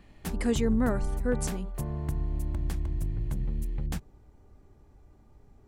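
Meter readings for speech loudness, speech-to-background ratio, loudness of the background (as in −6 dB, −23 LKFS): −30.5 LKFS, 3.5 dB, −34.0 LKFS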